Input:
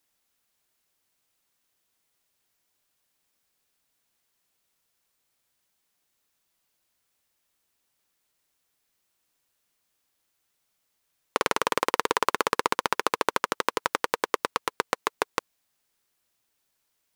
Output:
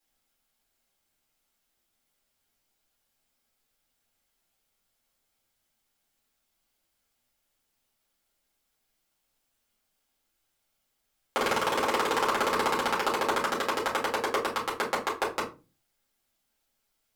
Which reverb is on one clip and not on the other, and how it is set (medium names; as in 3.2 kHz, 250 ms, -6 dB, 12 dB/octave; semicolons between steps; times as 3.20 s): simulated room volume 120 m³, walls furnished, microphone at 4 m; trim -9.5 dB